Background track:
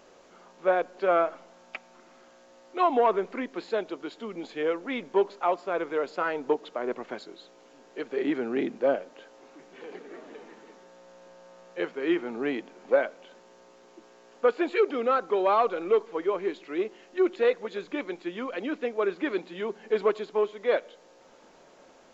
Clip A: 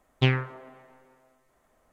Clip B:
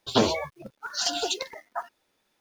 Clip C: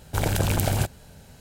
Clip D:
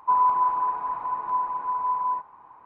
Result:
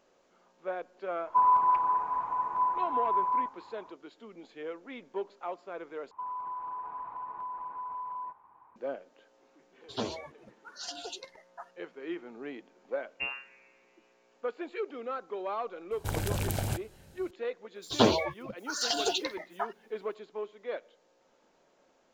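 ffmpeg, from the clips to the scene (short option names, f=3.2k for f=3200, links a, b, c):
-filter_complex "[4:a]asplit=2[a][b];[2:a]asplit=2[c][d];[0:a]volume=-12dB[e];[b]acompressor=threshold=-26dB:ratio=6:attack=3.2:release=140:knee=1:detection=peak[f];[c]lowpass=9.4k[g];[1:a]lowpass=f=2.5k:t=q:w=0.5098,lowpass=f=2.5k:t=q:w=0.6013,lowpass=f=2.5k:t=q:w=0.9,lowpass=f=2.5k:t=q:w=2.563,afreqshift=-2900[h];[d]acrossover=split=5800[i][j];[i]adelay=90[k];[k][j]amix=inputs=2:normalize=0[l];[e]asplit=2[m][n];[m]atrim=end=6.114[o];[f]atrim=end=2.65,asetpts=PTS-STARTPTS,volume=-9.5dB[p];[n]atrim=start=8.756[q];[a]atrim=end=2.65,asetpts=PTS-STARTPTS,volume=-2.5dB,afade=t=in:d=0.004:c=hsin,afade=t=out:st=2.646:d=0.004:c=hsin,adelay=1270[r];[g]atrim=end=2.4,asetpts=PTS-STARTPTS,volume=-13dB,afade=t=in:d=0.004:c=hsin,afade=t=out:st=2.396:d=0.004:c=hsin,adelay=9820[s];[h]atrim=end=1.92,asetpts=PTS-STARTPTS,volume=-14dB,afade=t=in:d=0.004:c=hsin,afade=t=out:st=1.916:d=0.004:c=hsin,adelay=12980[t];[3:a]atrim=end=1.4,asetpts=PTS-STARTPTS,volume=-8.5dB,afade=t=in:d=0.004:c=hsin,afade=t=out:st=1.396:d=0.004:c=hsin,adelay=15910[u];[l]atrim=end=2.4,asetpts=PTS-STARTPTS,volume=-1dB,afade=t=in:d=0.004:c=hsin,afade=t=out:st=2.396:d=0.004:c=hsin,adelay=17750[v];[o][p]acrossfade=d=0.004:c1=hsin:c2=hsin[w];[w][q]acrossfade=d=0.004:c1=hsin:c2=hsin[x];[x][r][s][t][u][v]amix=inputs=6:normalize=0"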